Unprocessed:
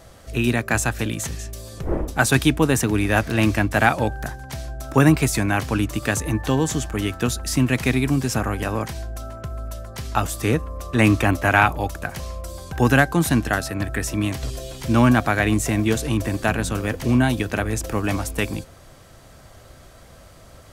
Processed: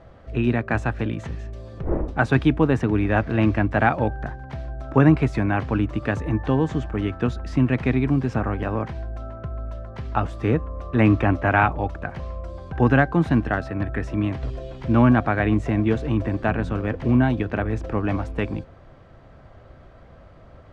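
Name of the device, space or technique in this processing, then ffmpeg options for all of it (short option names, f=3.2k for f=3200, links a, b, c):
phone in a pocket: -af "lowpass=3.2k,highshelf=f=2.5k:g=-12"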